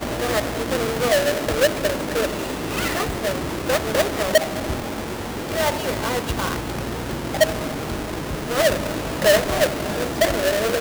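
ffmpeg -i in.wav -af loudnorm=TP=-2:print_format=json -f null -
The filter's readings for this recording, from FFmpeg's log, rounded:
"input_i" : "-21.9",
"input_tp" : "-6.7",
"input_lra" : "2.7",
"input_thresh" : "-31.9",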